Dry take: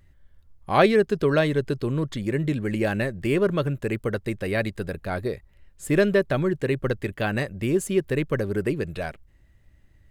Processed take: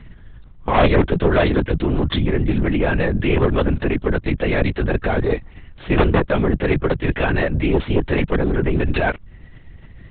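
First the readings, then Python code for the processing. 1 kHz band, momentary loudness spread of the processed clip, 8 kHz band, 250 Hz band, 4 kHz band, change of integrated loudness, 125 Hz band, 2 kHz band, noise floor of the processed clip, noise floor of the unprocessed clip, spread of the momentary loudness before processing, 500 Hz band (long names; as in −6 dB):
+6.0 dB, 5 LU, below −35 dB, +5.5 dB, +6.0 dB, +5.5 dB, +7.0 dB, +5.5 dB, −43 dBFS, −57 dBFS, 10 LU, +3.5 dB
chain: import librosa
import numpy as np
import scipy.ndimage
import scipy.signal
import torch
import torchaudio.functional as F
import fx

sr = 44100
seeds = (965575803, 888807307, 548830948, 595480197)

p1 = fx.dead_time(x, sr, dead_ms=0.051)
p2 = fx.cheby_harmonics(p1, sr, harmonics=(4, 5, 7), levels_db=(-8, -11, -30), full_scale_db=-4.5)
p3 = fx.over_compress(p2, sr, threshold_db=-25.0, ratio=-0.5)
p4 = p2 + (p3 * 10.0 ** (1.0 / 20.0))
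p5 = fx.lpc_vocoder(p4, sr, seeds[0], excitation='whisper', order=10)
y = p5 * 10.0 ** (-2.0 / 20.0)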